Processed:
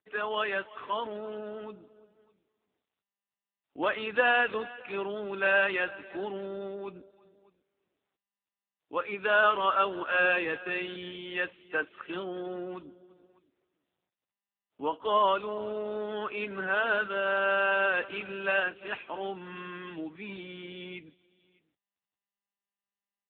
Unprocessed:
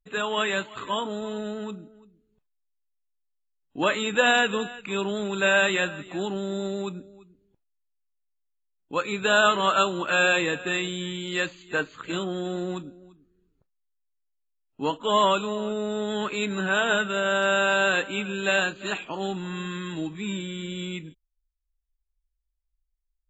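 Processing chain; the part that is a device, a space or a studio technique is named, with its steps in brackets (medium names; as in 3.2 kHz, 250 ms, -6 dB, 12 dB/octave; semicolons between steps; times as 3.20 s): satellite phone (band-pass 340–3400 Hz; delay 605 ms -23.5 dB; trim -2.5 dB; AMR-NB 6.7 kbps 8 kHz)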